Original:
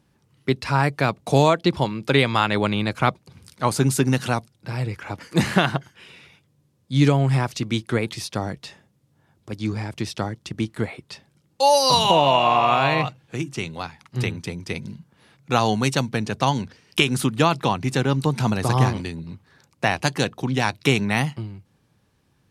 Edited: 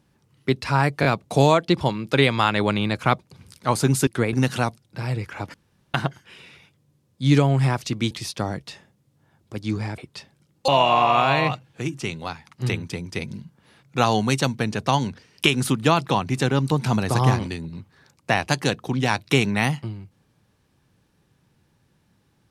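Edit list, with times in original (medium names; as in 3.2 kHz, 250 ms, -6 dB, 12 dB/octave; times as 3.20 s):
1.01 s: stutter 0.02 s, 3 plays
5.24–5.64 s: room tone
7.81–8.07 s: move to 4.03 s
9.94–10.93 s: delete
11.63–12.22 s: delete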